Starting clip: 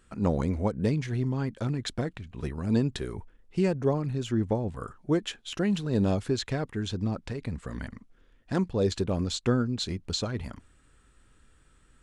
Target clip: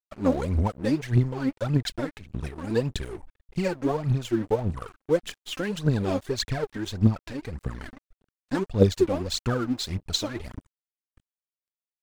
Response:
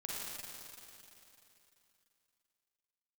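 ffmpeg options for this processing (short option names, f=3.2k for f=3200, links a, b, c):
-af "aphaser=in_gain=1:out_gain=1:delay=3.9:decay=0.78:speed=1.7:type=triangular,aeval=exprs='sgn(val(0))*max(abs(val(0))-0.00891,0)':c=same"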